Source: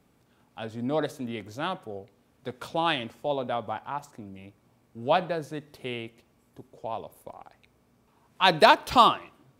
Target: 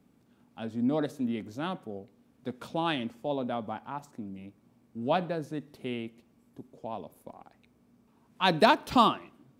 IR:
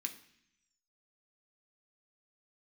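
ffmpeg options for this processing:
-af "equalizer=f=230:w=1.2:g=10.5,volume=0.531"

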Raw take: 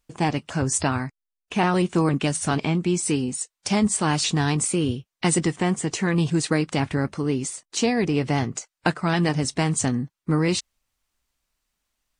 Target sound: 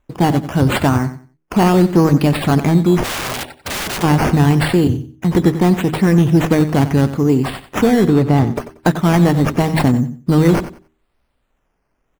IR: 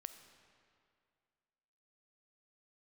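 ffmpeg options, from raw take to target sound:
-filter_complex "[0:a]asettb=1/sr,asplit=3[s0][s1][s2];[s0]atrim=end=4.874[s3];[s1]atrim=start=4.87:end=5.35,asetpts=PTS-STARTPTS,afade=t=in:d=0.004:c=qsin,afade=t=out:st=0.476:d=0.004:c=qsin,acrossover=split=200[s4][s5];[s5]acompressor=threshold=0.01:ratio=3[s6];[s4][s6]amix=inputs=2:normalize=0[s7];[s2]atrim=start=5.346[s8];[s3][s7]acrossfade=d=0.004:c1=hsin:c2=qsin[s9];[s9][s8]acrossfade=d=0.004:c1=qsin:c2=hsin,acrusher=samples=9:mix=1:aa=0.000001:lfo=1:lforange=5.4:lforate=0.78,tiltshelf=f=1100:g=5,acontrast=83,bandreject=f=78.62:t=h:w=4,bandreject=f=157.24:t=h:w=4,bandreject=f=235.86:t=h:w=4,bandreject=f=314.48:t=h:w=4,bandreject=f=393.1:t=h:w=4,asettb=1/sr,asplit=3[s10][s11][s12];[s10]atrim=end=8.054[s13];[s11]atrim=start=8.05:end=8.51,asetpts=PTS-STARTPTS,afade=t=in:d=0.004:c=qsin,afade=t=out:st=0.456:d=0.004:c=qsin,highshelf=f=4500:g=-9.5[s14];[s12]atrim=start=8.506[s15];[s13][s14]acrossfade=d=0.004:c1=hsin:c2=qsin[s16];[s16][s15]acrossfade=d=0.004:c1=qsin:c2=hsin,aecho=1:1:92|184|276:0.224|0.0493|0.0108,asplit=3[s17][s18][s19];[s17]afade=t=out:st=3.03:d=0.02[s20];[s18]aeval=exprs='(mod(7.94*val(0)+1,2)-1)/7.94':c=same,afade=t=in:st=3.03:d=0.02,afade=t=out:st=4.02:d=0.02[s21];[s19]afade=t=in:st=4.02:d=0.02[s22];[s20][s21][s22]amix=inputs=3:normalize=0"

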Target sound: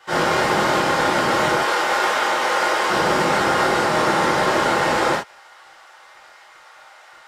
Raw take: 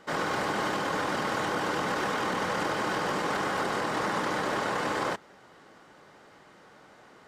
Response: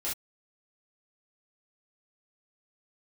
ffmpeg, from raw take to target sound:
-filter_complex "[0:a]asettb=1/sr,asplit=3[s0][s1][s2];[s0]atrim=end=1.564[s3];[s1]atrim=start=1.56:end=2.9,asetpts=PTS-STARTPTS,afade=t=in:d=0.004:c=qsin,afade=t=out:st=1.336:d=0.004:c=qsin,highpass=460[s4];[s2]atrim=start=2.896[s5];[s3][s4]acrossfade=d=0.004:c1=hsin:c2=qsin[s6];[s6][s5]acrossfade=d=0.004:c1=qsin:c2=hsin,acrossover=split=690|1100[s7][s8][s9];[s7]aeval=exprs='sgn(val(0))*max(abs(val(0))-0.00251,0)':c=same[s10];[s10][s8][s9]amix=inputs=3:normalize=0[s11];[1:a]atrim=start_sample=2205[s12];[s11][s12]afir=irnorm=-1:irlink=0,volume=2.51"

